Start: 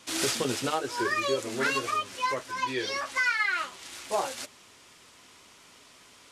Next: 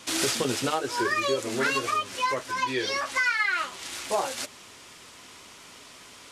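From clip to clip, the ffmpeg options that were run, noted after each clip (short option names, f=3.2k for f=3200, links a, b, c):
-af "acompressor=threshold=-37dB:ratio=1.5,volume=6.5dB"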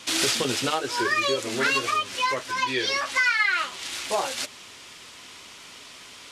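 -af "equalizer=f=3.3k:w=0.67:g=5.5"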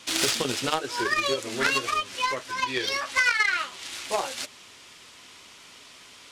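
-af "aeval=exprs='0.335*(cos(1*acos(clip(val(0)/0.335,-1,1)))-cos(1*PI/2))+0.075*(cos(3*acos(clip(val(0)/0.335,-1,1)))-cos(3*PI/2))':c=same,volume=5.5dB"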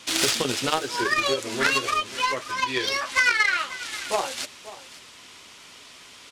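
-af "aecho=1:1:537:0.15,volume=2dB"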